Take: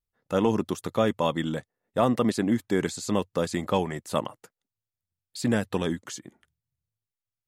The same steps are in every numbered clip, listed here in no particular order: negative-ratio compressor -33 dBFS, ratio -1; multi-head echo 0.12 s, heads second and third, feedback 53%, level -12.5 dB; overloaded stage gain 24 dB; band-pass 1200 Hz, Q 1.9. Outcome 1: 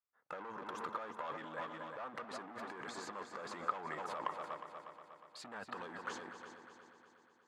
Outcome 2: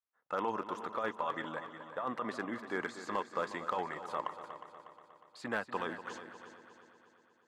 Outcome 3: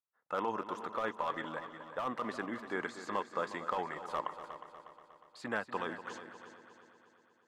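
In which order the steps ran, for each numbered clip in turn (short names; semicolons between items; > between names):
overloaded stage > multi-head echo > negative-ratio compressor > band-pass; band-pass > negative-ratio compressor > overloaded stage > multi-head echo; band-pass > overloaded stage > negative-ratio compressor > multi-head echo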